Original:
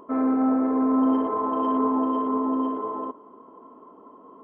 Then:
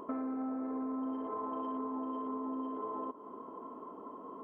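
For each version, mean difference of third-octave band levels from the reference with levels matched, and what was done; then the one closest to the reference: 3.0 dB: compressor 8:1, threshold -37 dBFS, peak gain reduction 18 dB; gain +1 dB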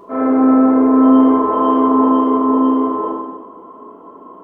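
1.5 dB: non-linear reverb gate 0.43 s falling, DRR -7.5 dB; gain +2.5 dB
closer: second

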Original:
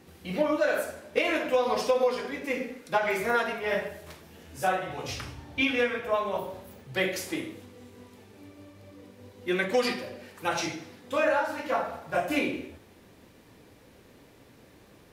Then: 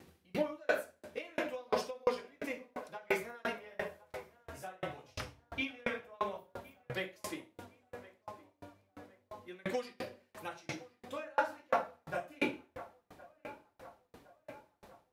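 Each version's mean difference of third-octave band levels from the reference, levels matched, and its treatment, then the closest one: 8.0 dB: on a send: narrowing echo 1.064 s, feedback 73%, band-pass 850 Hz, level -14 dB; on the sum: dB-ramp tremolo decaying 2.9 Hz, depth 36 dB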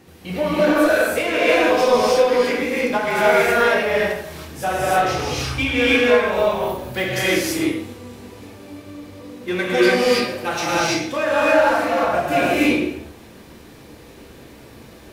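6.0 dB: in parallel at -5 dB: overloaded stage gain 29 dB; on the sum: non-linear reverb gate 0.35 s rising, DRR -6.5 dB; gain +1 dB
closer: second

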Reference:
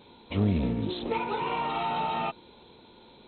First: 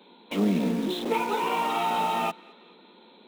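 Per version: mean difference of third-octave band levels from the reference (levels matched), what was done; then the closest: 7.5 dB: steep high-pass 170 Hz 96 dB/oct; in parallel at -6 dB: requantised 6-bit, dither none; on the sum: narrowing echo 0.214 s, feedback 60%, band-pass 1900 Hz, level -22 dB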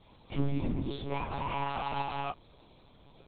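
3.0 dB: chorus voices 6, 1.3 Hz, delay 19 ms, depth 3 ms; monotone LPC vocoder at 8 kHz 140 Hz; gain -1.5 dB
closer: second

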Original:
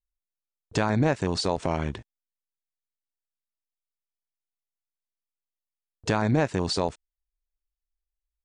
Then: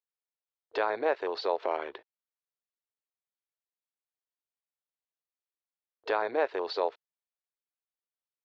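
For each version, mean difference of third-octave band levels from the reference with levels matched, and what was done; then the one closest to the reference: 10.5 dB: elliptic band-pass 420–4200 Hz, stop band 40 dB; high shelf 2200 Hz -7.5 dB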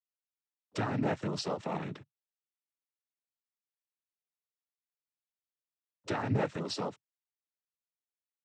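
4.0 dB: LPF 6000 Hz; noise vocoder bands 12; gain -7.5 dB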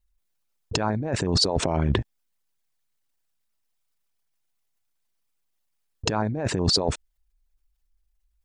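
7.0 dB: formant sharpening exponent 1.5; negative-ratio compressor -33 dBFS, ratio -1; gain +9 dB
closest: second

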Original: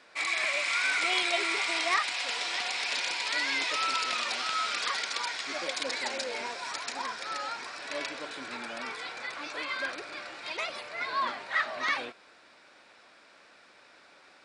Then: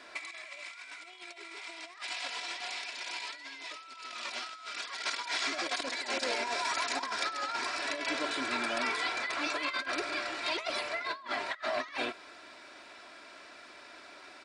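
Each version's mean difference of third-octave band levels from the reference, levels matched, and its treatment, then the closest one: 7.5 dB: comb 3 ms, depth 50%; negative-ratio compressor -36 dBFS, ratio -0.5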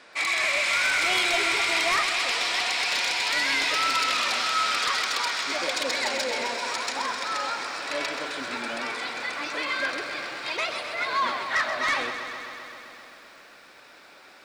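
3.5 dB: in parallel at -8 dB: sine folder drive 10 dB, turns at -13.5 dBFS; on the sum: lo-fi delay 0.13 s, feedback 80%, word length 9-bit, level -9.5 dB; gain -3.5 dB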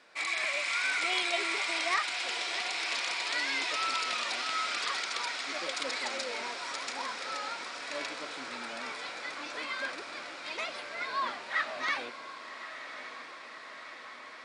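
2.5 dB: bell 86 Hz -7.5 dB 0.55 oct; diffused feedback echo 1.138 s, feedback 72%, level -11 dB; gain -2.5 dB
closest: third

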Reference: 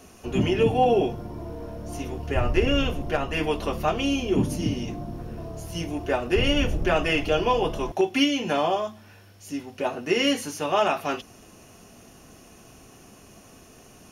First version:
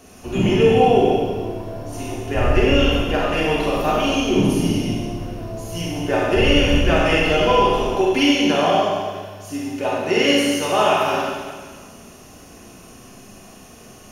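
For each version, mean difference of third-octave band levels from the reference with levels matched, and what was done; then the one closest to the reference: 4.5 dB: Schroeder reverb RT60 1.6 s, combs from 31 ms, DRR -4 dB; gain +1.5 dB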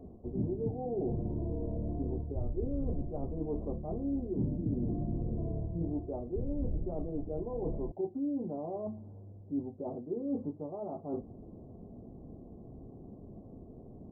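15.0 dB: reverse; compressor 10:1, threshold -32 dBFS, peak gain reduction 17.5 dB; reverse; Gaussian blur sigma 15 samples; gain +4 dB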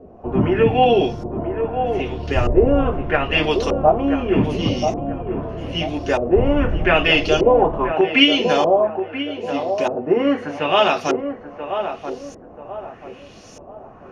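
7.5 dB: LFO low-pass saw up 0.81 Hz 480–6700 Hz; on a send: narrowing echo 0.984 s, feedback 41%, band-pass 580 Hz, level -6.5 dB; on the sum: gain +5 dB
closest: first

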